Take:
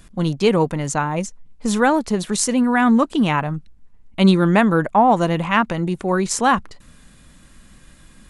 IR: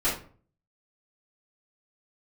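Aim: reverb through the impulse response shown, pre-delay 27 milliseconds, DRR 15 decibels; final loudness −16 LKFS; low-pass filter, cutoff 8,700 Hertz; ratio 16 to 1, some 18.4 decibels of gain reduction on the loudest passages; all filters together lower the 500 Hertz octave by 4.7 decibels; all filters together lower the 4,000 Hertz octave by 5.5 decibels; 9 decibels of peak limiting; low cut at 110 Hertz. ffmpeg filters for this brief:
-filter_complex "[0:a]highpass=110,lowpass=8700,equalizer=frequency=500:width_type=o:gain=-6,equalizer=frequency=4000:width_type=o:gain=-7.5,acompressor=threshold=-29dB:ratio=16,alimiter=level_in=2.5dB:limit=-24dB:level=0:latency=1,volume=-2.5dB,asplit=2[link_01][link_02];[1:a]atrim=start_sample=2205,adelay=27[link_03];[link_02][link_03]afir=irnorm=-1:irlink=0,volume=-26.5dB[link_04];[link_01][link_04]amix=inputs=2:normalize=0,volume=19dB"

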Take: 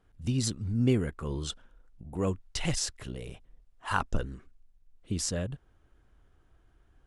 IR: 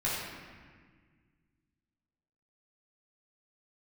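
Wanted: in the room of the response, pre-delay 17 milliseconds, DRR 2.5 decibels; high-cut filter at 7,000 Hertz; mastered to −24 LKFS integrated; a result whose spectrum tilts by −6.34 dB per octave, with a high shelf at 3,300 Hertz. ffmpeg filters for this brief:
-filter_complex "[0:a]lowpass=7000,highshelf=frequency=3300:gain=-6.5,asplit=2[link_01][link_02];[1:a]atrim=start_sample=2205,adelay=17[link_03];[link_02][link_03]afir=irnorm=-1:irlink=0,volume=-11dB[link_04];[link_01][link_04]amix=inputs=2:normalize=0,volume=8dB"

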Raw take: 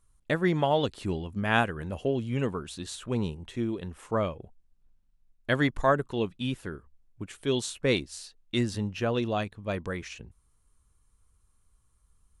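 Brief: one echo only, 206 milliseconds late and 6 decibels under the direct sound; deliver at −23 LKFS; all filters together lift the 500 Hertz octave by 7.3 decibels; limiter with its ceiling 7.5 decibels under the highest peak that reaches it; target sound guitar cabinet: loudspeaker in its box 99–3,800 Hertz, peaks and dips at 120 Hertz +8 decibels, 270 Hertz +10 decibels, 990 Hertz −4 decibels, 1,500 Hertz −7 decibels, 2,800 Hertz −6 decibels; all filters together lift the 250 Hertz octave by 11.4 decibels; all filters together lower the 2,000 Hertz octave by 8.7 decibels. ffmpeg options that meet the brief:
ffmpeg -i in.wav -af "equalizer=frequency=250:width_type=o:gain=4.5,equalizer=frequency=500:width_type=o:gain=7.5,equalizer=frequency=2000:width_type=o:gain=-6,alimiter=limit=-14.5dB:level=0:latency=1,highpass=99,equalizer=frequency=120:width_type=q:width=4:gain=8,equalizer=frequency=270:width_type=q:width=4:gain=10,equalizer=frequency=990:width_type=q:width=4:gain=-4,equalizer=frequency=1500:width_type=q:width=4:gain=-7,equalizer=frequency=2800:width_type=q:width=4:gain=-6,lowpass=frequency=3800:width=0.5412,lowpass=frequency=3800:width=1.3066,aecho=1:1:206:0.501" out.wav

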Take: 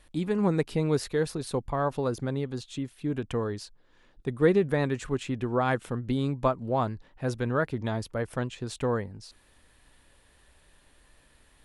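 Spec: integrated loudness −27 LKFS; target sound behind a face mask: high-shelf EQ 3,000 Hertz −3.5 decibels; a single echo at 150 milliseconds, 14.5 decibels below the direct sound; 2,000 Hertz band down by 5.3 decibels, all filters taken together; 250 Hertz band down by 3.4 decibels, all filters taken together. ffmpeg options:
ffmpeg -i in.wav -af "equalizer=frequency=250:width_type=o:gain=-4.5,equalizer=frequency=2000:width_type=o:gain=-6,highshelf=frequency=3000:gain=-3.5,aecho=1:1:150:0.188,volume=4dB" out.wav

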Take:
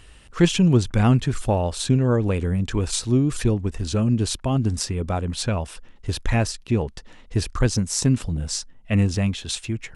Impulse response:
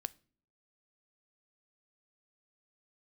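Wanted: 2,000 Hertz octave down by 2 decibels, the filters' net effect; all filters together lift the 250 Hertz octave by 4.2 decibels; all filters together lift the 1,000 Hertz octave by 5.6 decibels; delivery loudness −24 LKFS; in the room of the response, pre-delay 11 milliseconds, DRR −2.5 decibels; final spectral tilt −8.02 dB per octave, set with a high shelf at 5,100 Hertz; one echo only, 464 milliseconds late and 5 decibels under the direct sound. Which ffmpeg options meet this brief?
-filter_complex "[0:a]equalizer=frequency=250:width_type=o:gain=5,equalizer=frequency=1000:width_type=o:gain=8.5,equalizer=frequency=2000:width_type=o:gain=-5,highshelf=frequency=5100:gain=-4.5,aecho=1:1:464:0.562,asplit=2[link_01][link_02];[1:a]atrim=start_sample=2205,adelay=11[link_03];[link_02][link_03]afir=irnorm=-1:irlink=0,volume=4.5dB[link_04];[link_01][link_04]amix=inputs=2:normalize=0,volume=-9.5dB"

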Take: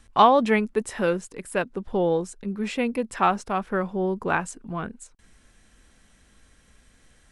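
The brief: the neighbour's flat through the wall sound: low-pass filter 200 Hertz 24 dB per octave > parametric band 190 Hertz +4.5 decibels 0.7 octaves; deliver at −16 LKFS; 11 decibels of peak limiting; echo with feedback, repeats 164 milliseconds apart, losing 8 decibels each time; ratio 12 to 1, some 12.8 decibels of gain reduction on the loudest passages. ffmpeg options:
ffmpeg -i in.wav -af "acompressor=threshold=-23dB:ratio=12,alimiter=limit=-23dB:level=0:latency=1,lowpass=frequency=200:width=0.5412,lowpass=frequency=200:width=1.3066,equalizer=frequency=190:width_type=o:width=0.7:gain=4.5,aecho=1:1:164|328|492|656|820:0.398|0.159|0.0637|0.0255|0.0102,volume=20.5dB" out.wav

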